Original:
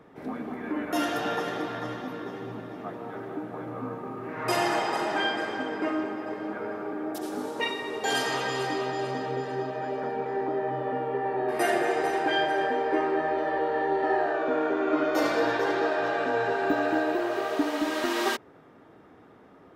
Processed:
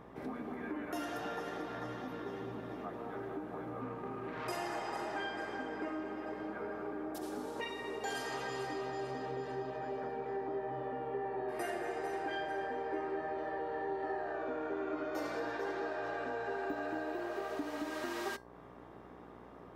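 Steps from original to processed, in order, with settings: 3.81–4.48 self-modulated delay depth 0.16 ms; compressor 2.5:1, threshold -39 dBFS, peak gain reduction 12.5 dB; dynamic EQ 3300 Hz, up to -4 dB, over -54 dBFS, Q 1.9; resonator 400 Hz, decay 0.25 s, harmonics all, mix 50%; buzz 60 Hz, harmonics 19, -61 dBFS -1 dB/oct; gain +3.5 dB

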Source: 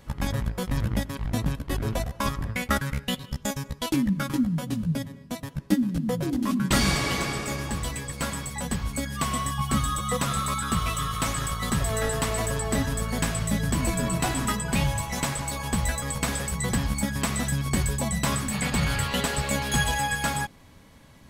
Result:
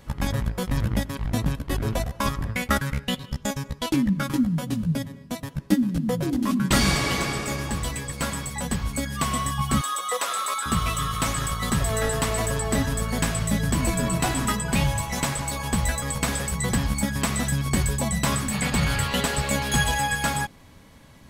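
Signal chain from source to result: 2.92–4.23 high shelf 8100 Hz -5 dB; 9.81–10.66 HPF 440 Hz 24 dB/oct; gain +2 dB

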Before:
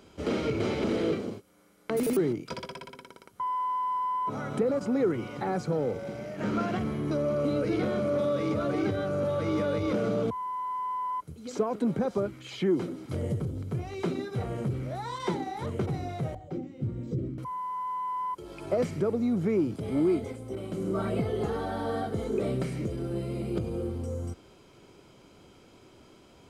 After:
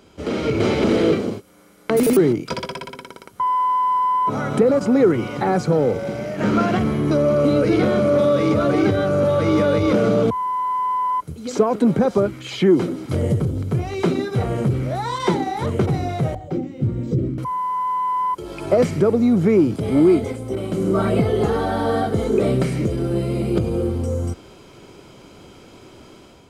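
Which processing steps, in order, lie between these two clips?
AGC gain up to 7 dB; gain +4 dB

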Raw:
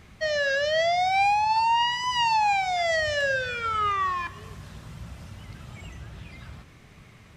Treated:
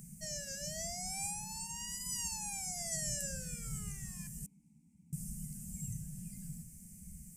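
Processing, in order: elliptic band-stop 140–8300 Hz, stop band 40 dB; spectral gate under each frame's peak -10 dB weak; 4.46–5.13 vowel filter u; gain +17 dB

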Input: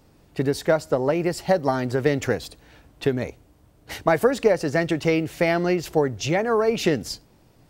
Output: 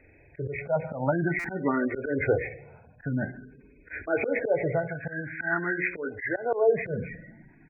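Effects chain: nonlinear frequency compression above 1400 Hz 4:1; 4.75–6.46 tilt shelf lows -8.5 dB, about 1400 Hz; notches 60/120/180/240/300/360/420/480/540 Hz; feedback echo 0.146 s, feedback 28%, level -22 dB; on a send at -17 dB: reverb RT60 1.2 s, pre-delay 37 ms; on the sum: spectral gate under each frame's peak -20 dB strong; auto swell 0.12 s; stuck buffer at 1.39, samples 256, times 8; endless phaser +0.48 Hz; gain +2 dB

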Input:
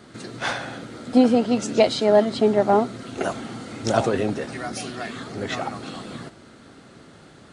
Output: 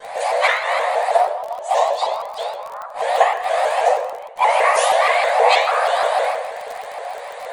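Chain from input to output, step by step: flipped gate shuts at -15 dBFS, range -30 dB; frequency shift +420 Hz; gate with hold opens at -43 dBFS; bell 150 Hz +8.5 dB 1.9 oct; ring modulator 30 Hz; bell 5300 Hz -12 dB 0.46 oct; reverb RT60 0.90 s, pre-delay 4 ms, DRR -11 dB; crackle 33/s -29 dBFS; shaped vibrato saw up 6.3 Hz, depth 160 cents; gain +4.5 dB

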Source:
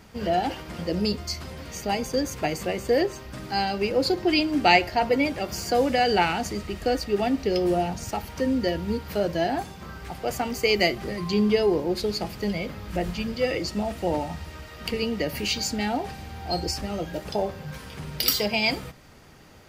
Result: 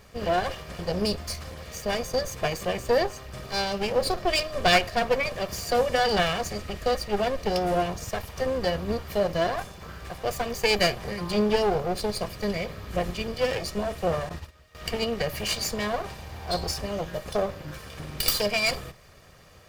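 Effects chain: minimum comb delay 1.7 ms; 14.29–14.75 gate -36 dBFS, range -15 dB

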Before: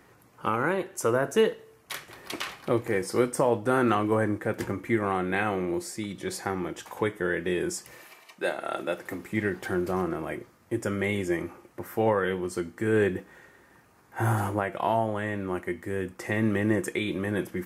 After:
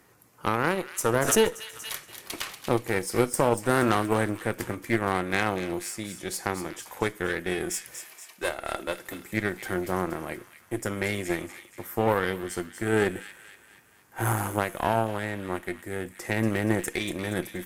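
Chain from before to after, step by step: added harmonics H 4 -19 dB, 7 -26 dB, 8 -34 dB, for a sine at -9 dBFS; high shelf 5700 Hz +10.5 dB; thin delay 0.237 s, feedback 50%, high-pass 2200 Hz, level -8.5 dB; 1.15–1.95 backwards sustainer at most 63 dB/s

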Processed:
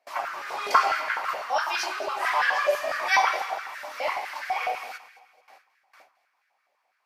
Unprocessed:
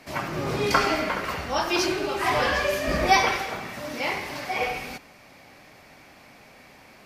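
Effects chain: gate with hold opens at -38 dBFS; echo with dull and thin repeats by turns 0.109 s, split 1400 Hz, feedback 65%, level -13.5 dB; stepped high-pass 12 Hz 640–1600 Hz; gain -5.5 dB

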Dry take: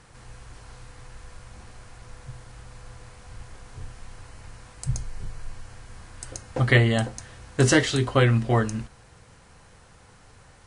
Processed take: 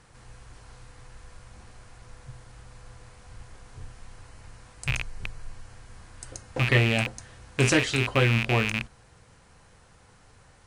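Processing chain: rattling part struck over -29 dBFS, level -11 dBFS; gain -3.5 dB

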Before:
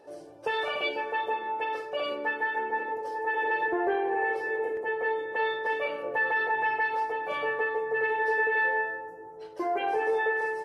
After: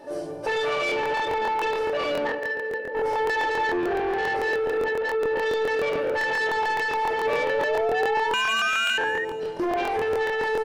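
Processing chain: 2.27–2.95 vocal tract filter e; shoebox room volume 260 m³, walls furnished, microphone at 2.6 m; 8.33–8.98 inverted band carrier 3300 Hz; limiter -22 dBFS, peak gain reduction 10.5 dB; 4.84–5.43 air absorption 350 m; soft clip -29 dBFS, distortion -13 dB; on a send: feedback echo 0.21 s, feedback 44%, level -16 dB; 7.25–9.25 on the sum: painted sound rise 440–1900 Hz -37 dBFS; crackling interface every 0.14 s, samples 1024, repeat, from 0.87; gain +8 dB

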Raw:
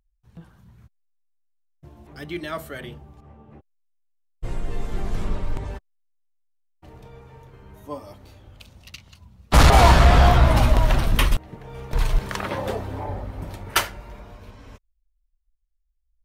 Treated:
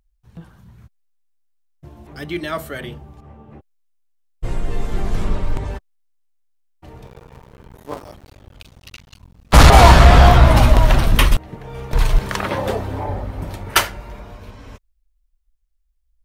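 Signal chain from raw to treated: 7.06–9.53 cycle switcher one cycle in 2, muted; gain +5.5 dB

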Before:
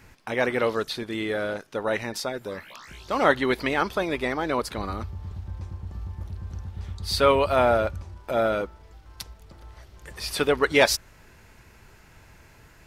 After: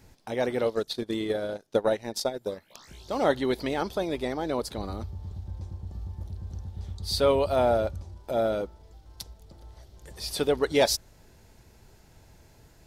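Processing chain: band shelf 1700 Hz -8.5 dB; 0.64–2.76 transient shaper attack +10 dB, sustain -10 dB; gain -2 dB

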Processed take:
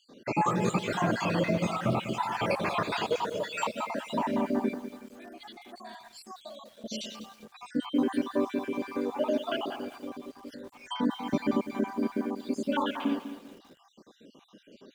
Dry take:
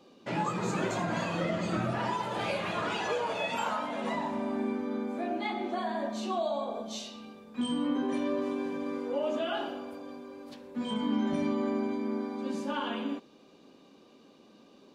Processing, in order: random spectral dropouts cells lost 57%; 4.74–6.84 pre-emphasis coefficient 0.9; lo-fi delay 0.198 s, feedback 35%, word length 9-bit, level -11 dB; gain +5.5 dB

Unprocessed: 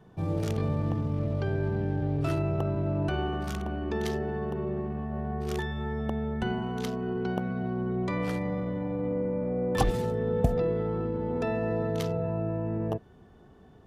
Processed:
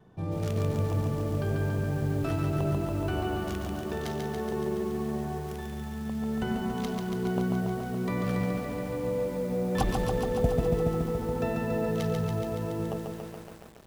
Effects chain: spectral gain 5.41–6.22, 240–9500 Hz -8 dB; vibrato 0.81 Hz 12 cents; lo-fi delay 0.141 s, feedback 80%, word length 8-bit, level -3.5 dB; gain -2.5 dB

